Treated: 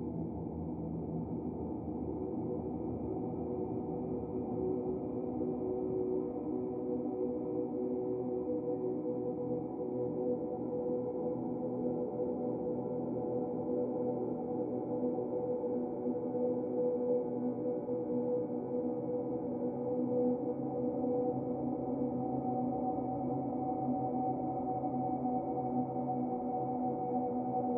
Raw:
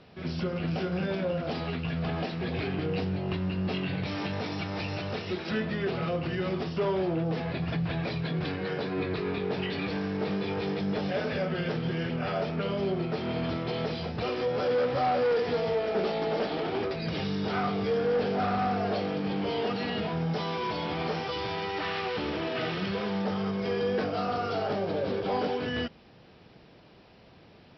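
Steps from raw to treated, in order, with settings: cascade formant filter u; Paulstretch 26×, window 0.50 s, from 14.09 s; trim +5.5 dB

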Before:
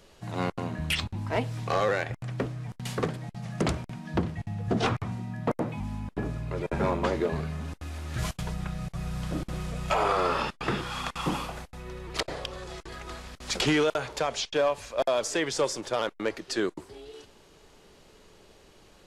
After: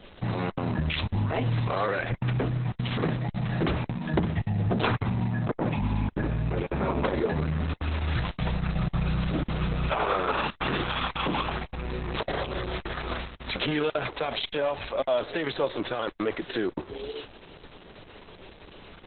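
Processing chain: 13.24–14.31 s: companding laws mixed up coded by A; peak limiter -27.5 dBFS, peak gain reduction 11 dB; trim +9 dB; Opus 6 kbps 48 kHz

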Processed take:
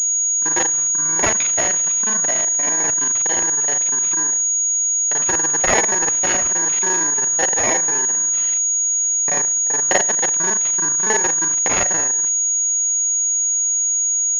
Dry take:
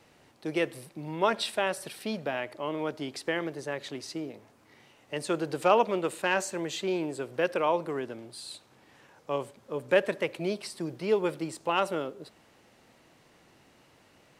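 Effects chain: time reversed locally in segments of 35 ms; careless resampling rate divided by 6×, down none, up zero stuff; class-D stage that switches slowly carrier 6.7 kHz

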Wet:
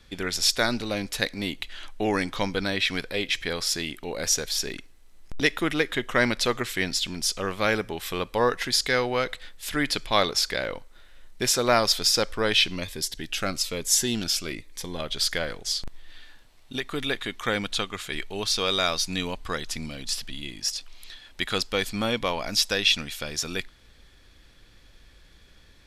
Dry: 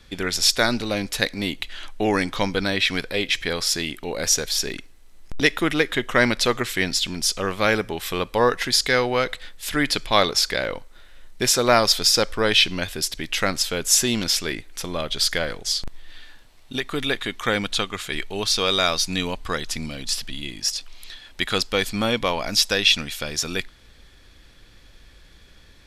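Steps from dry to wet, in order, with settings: 12.76–15.00 s: Shepard-style phaser falling 1.1 Hz; trim -4 dB

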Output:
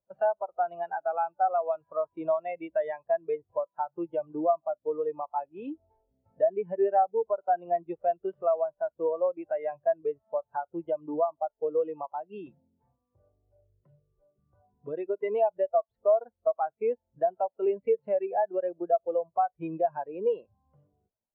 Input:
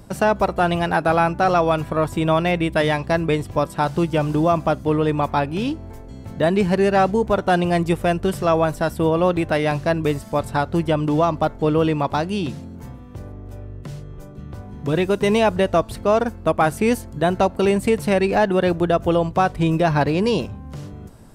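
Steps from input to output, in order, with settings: three-band isolator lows -15 dB, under 450 Hz, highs -21 dB, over 4.2 kHz; compression 3:1, threshold -32 dBFS, peak gain reduction 13.5 dB; spectral contrast expander 2.5:1; trim +2.5 dB

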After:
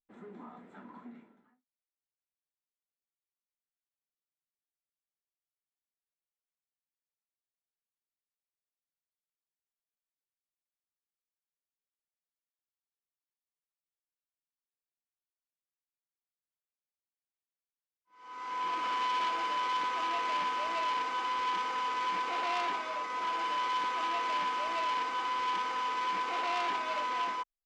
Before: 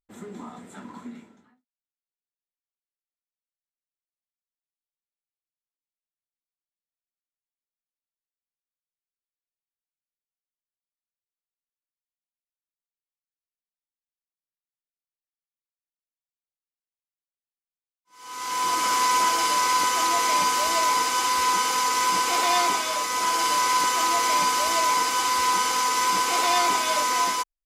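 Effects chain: low-pass 2.2 kHz 12 dB/octave; peaking EQ 87 Hz -11.5 dB 1.4 oct; transformer saturation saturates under 2.3 kHz; trim -7 dB

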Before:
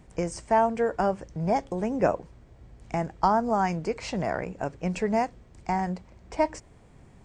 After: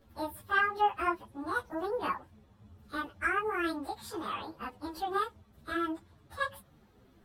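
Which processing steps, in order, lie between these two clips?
frequency-domain pitch shifter +10 st; hum 50 Hz, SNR 32 dB; three-phase chorus; trim -1.5 dB

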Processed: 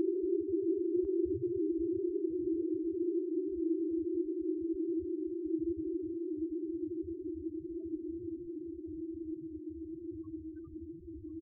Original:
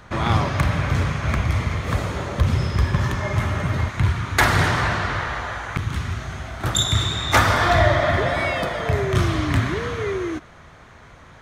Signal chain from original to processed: Paulstretch 37×, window 1.00 s, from 10.36 s; loudest bins only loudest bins 4; echo from a far wall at 180 m, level -13 dB; trim -2.5 dB

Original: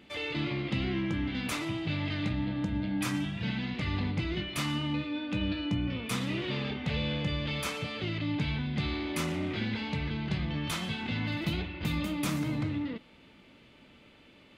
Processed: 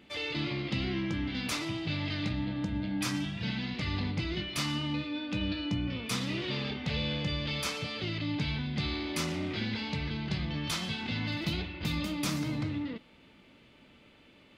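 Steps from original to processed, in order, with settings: dynamic bell 5 kHz, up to +8 dB, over -57 dBFS, Q 1.5; trim -1.5 dB

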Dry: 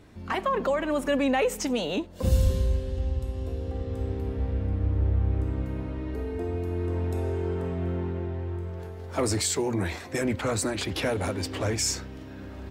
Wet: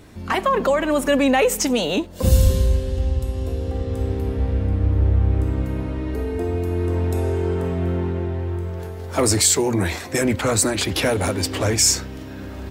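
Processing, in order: treble shelf 6.4 kHz +8 dB; trim +7 dB

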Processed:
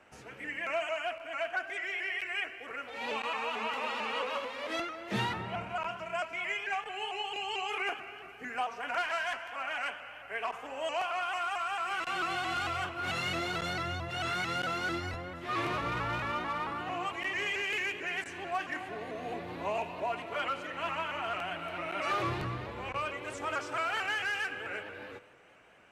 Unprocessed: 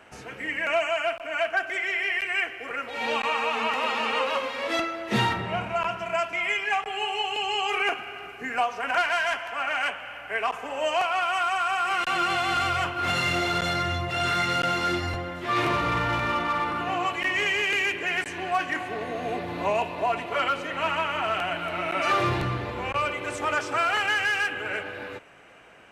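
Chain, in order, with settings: on a send at -15.5 dB: reverberation RT60 1.4 s, pre-delay 67 ms; on the sum: vibrato with a chosen wave saw up 4.5 Hz, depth 100 cents; trim -8.5 dB

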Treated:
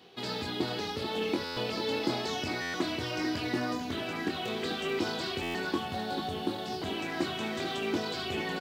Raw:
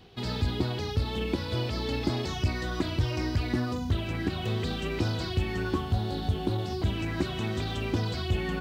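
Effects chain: high-pass 270 Hz 12 dB/octave; doubling 23 ms -6 dB; on a send: delay 440 ms -8.5 dB; on the sum: buffer glitch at 1.44/2.61/5.42 s, samples 512, times 10

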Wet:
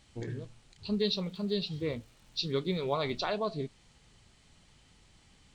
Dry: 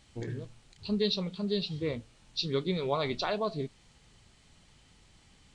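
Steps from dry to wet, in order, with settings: 0.87–3.18 s: crackle 210 per s -51 dBFS; trim -1 dB

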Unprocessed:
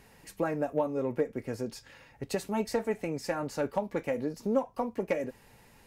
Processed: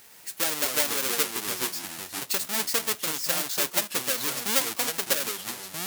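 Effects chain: square wave that keeps the level; tilt EQ +4.5 dB/octave; ever faster or slower copies 124 ms, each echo -4 st, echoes 2, each echo -6 dB; trim -3.5 dB

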